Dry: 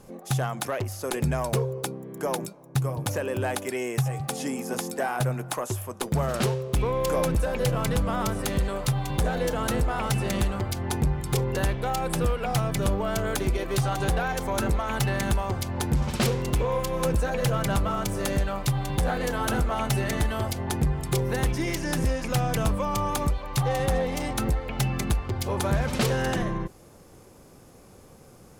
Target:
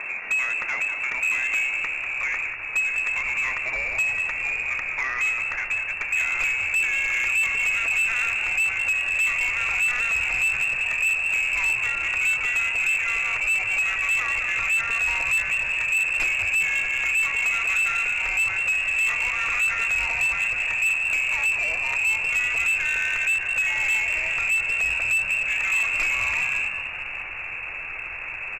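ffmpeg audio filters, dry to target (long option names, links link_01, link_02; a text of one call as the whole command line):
ffmpeg -i in.wav -filter_complex "[0:a]lowshelf=frequency=210:gain=6,acompressor=mode=upward:threshold=-21dB:ratio=2.5,bandreject=frequency=157:width_type=h:width=4,bandreject=frequency=314:width_type=h:width=4,bandreject=frequency=471:width_type=h:width=4,bandreject=frequency=628:width_type=h:width=4,bandreject=frequency=785:width_type=h:width=4,bandreject=frequency=942:width_type=h:width=4,bandreject=frequency=1099:width_type=h:width=4,asplit=2[link_01][link_02];[link_02]aecho=0:1:530|1060|1590|2120|2650:0.168|0.089|0.0472|0.025|0.0132[link_03];[link_01][link_03]amix=inputs=2:normalize=0,aeval=exprs='0.316*(cos(1*acos(clip(val(0)/0.316,-1,1)))-cos(1*PI/2))+0.01*(cos(2*acos(clip(val(0)/0.316,-1,1)))-cos(2*PI/2))+0.0112*(cos(6*acos(clip(val(0)/0.316,-1,1)))-cos(6*PI/2))':channel_layout=same,aresample=8000,acrusher=bits=5:mix=0:aa=0.000001,aresample=44100,lowpass=frequency=2300:width_type=q:width=0.5098,lowpass=frequency=2300:width_type=q:width=0.6013,lowpass=frequency=2300:width_type=q:width=0.9,lowpass=frequency=2300:width_type=q:width=2.563,afreqshift=-2700,asubboost=boost=11.5:cutoff=50,asplit=5[link_04][link_05][link_06][link_07][link_08];[link_05]adelay=194,afreqshift=72,volume=-8dB[link_09];[link_06]adelay=388,afreqshift=144,volume=-17.4dB[link_10];[link_07]adelay=582,afreqshift=216,volume=-26.7dB[link_11];[link_08]adelay=776,afreqshift=288,volume=-36.1dB[link_12];[link_04][link_09][link_10][link_11][link_12]amix=inputs=5:normalize=0,asoftclip=type=tanh:threshold=-18dB" out.wav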